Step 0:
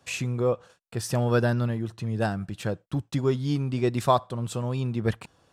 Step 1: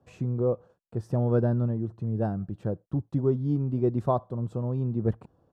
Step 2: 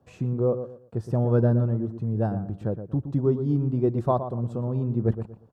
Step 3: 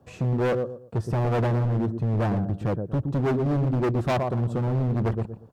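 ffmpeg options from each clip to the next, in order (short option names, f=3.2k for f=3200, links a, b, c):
-af "firequalizer=gain_entry='entry(360,0);entry(2200,-23);entry(10000,-27)':delay=0.05:min_phase=1"
-filter_complex "[0:a]asplit=2[a][b];[b]adelay=118,lowpass=f=1.6k:p=1,volume=-9.5dB,asplit=2[c][d];[d]adelay=118,lowpass=f=1.6k:p=1,volume=0.28,asplit=2[e][f];[f]adelay=118,lowpass=f=1.6k:p=1,volume=0.28[g];[a][c][e][g]amix=inputs=4:normalize=0,volume=2dB"
-af "volume=27dB,asoftclip=hard,volume=-27dB,volume=6dB"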